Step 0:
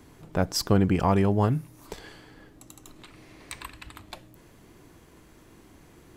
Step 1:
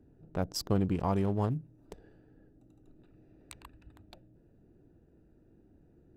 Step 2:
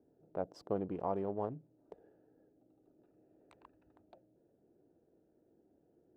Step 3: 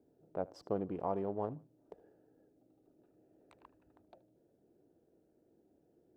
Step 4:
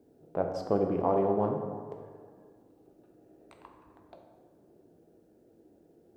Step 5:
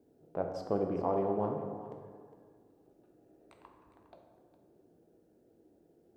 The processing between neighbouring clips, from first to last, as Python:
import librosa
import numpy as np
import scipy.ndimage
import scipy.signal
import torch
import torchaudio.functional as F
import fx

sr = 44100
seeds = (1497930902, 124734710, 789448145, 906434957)

y1 = fx.wiener(x, sr, points=41)
y1 = fx.dynamic_eq(y1, sr, hz=1900.0, q=1.4, threshold_db=-46.0, ratio=4.0, max_db=-5)
y1 = y1 * 10.0 ** (-7.0 / 20.0)
y2 = fx.bandpass_q(y1, sr, hz=570.0, q=1.3)
y2 = y2 * 10.0 ** (-1.0 / 20.0)
y3 = fx.echo_feedback(y2, sr, ms=76, feedback_pct=34, wet_db=-22)
y4 = fx.rev_plate(y3, sr, seeds[0], rt60_s=1.8, hf_ratio=0.5, predelay_ms=0, drr_db=2.5)
y4 = y4 * 10.0 ** (7.5 / 20.0)
y5 = y4 + 10.0 ** (-14.5 / 20.0) * np.pad(y4, (int(409 * sr / 1000.0), 0))[:len(y4)]
y5 = y5 * 10.0 ** (-4.5 / 20.0)